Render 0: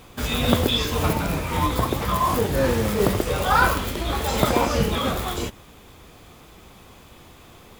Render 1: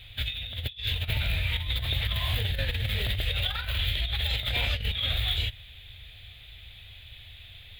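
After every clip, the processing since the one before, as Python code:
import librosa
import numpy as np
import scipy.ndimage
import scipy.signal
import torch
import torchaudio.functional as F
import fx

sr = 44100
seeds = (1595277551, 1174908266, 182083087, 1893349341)

y = fx.curve_eq(x, sr, hz=(110.0, 160.0, 340.0, 650.0, 1100.0, 1800.0, 3700.0, 5600.0, 13000.0), db=(0, -19, -27, -15, -25, -3, 7, -24, -11))
y = fx.over_compress(y, sr, threshold_db=-28.0, ratio=-0.5)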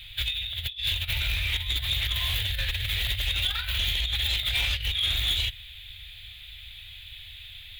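y = fx.tone_stack(x, sr, knobs='10-0-10')
y = 10.0 ** (-26.0 / 20.0) * np.tanh(y / 10.0 ** (-26.0 / 20.0))
y = y * librosa.db_to_amplitude(7.5)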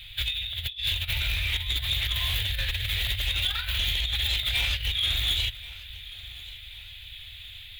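y = fx.echo_feedback(x, sr, ms=1084, feedback_pct=42, wet_db=-19)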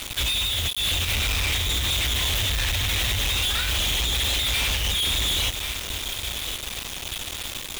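y = fx.quant_companded(x, sr, bits=2)
y = y * librosa.db_to_amplitude(2.0)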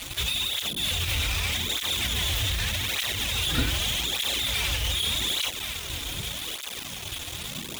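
y = fx.dmg_wind(x, sr, seeds[0], corner_hz=200.0, level_db=-39.0)
y = fx.flanger_cancel(y, sr, hz=0.83, depth_ms=5.5)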